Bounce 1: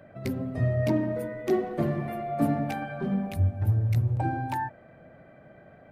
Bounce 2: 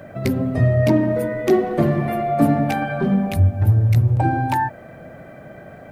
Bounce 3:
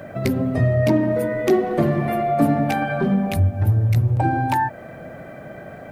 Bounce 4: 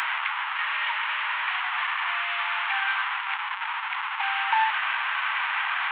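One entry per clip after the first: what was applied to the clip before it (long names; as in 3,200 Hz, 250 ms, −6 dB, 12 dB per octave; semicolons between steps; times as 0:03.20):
in parallel at −1.5 dB: downward compressor, threshold −32 dBFS, peak gain reduction 13 dB; on the sum: bit-depth reduction 12 bits, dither none; level +7 dB
low-shelf EQ 140 Hz −3 dB; in parallel at 0 dB: downward compressor, threshold −24 dBFS, peak gain reduction 13 dB; on the sum: level −3 dB
linear delta modulator 16 kbit/s, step −15 dBFS; Butterworth high-pass 870 Hz 72 dB per octave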